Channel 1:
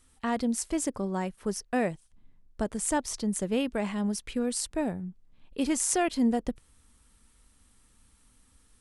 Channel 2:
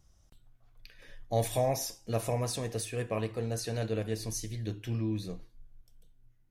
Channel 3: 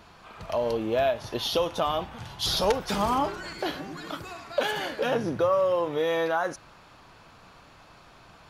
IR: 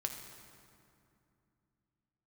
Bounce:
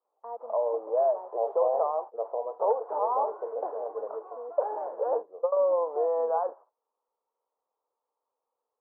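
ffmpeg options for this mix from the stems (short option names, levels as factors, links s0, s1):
-filter_complex "[0:a]volume=0.501,asplit=2[s0][s1];[1:a]adelay=50,volume=1.26[s2];[2:a]agate=range=0.224:threshold=0.00708:ratio=16:detection=peak,volume=1[s3];[s1]apad=whole_len=374616[s4];[s3][s4]sidechaingate=range=0.0224:threshold=0.00158:ratio=16:detection=peak[s5];[s0][s2][s5]amix=inputs=3:normalize=0,asuperpass=centerf=680:order=8:qfactor=1.1"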